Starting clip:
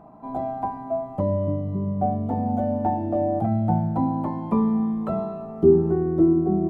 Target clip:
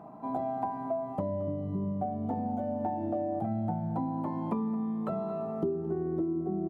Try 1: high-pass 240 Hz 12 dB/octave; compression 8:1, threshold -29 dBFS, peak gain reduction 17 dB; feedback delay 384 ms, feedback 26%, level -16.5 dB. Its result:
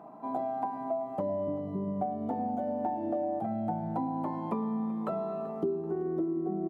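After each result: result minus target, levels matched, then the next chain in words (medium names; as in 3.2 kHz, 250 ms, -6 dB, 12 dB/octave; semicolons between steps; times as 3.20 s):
echo 163 ms late; 125 Hz band -4.5 dB
high-pass 240 Hz 12 dB/octave; compression 8:1, threshold -29 dBFS, peak gain reduction 17 dB; feedback delay 221 ms, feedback 26%, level -16.5 dB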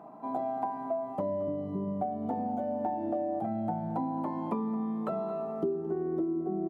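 125 Hz band -5.0 dB
high-pass 110 Hz 12 dB/octave; compression 8:1, threshold -29 dBFS, peak gain reduction 18 dB; feedback delay 221 ms, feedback 26%, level -16.5 dB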